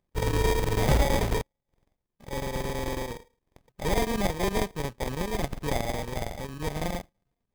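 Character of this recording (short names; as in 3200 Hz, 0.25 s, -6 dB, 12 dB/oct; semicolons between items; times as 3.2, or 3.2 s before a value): a buzz of ramps at a fixed pitch in blocks of 32 samples; chopped level 9.1 Hz, depth 65%, duty 85%; aliases and images of a low sample rate 1400 Hz, jitter 0%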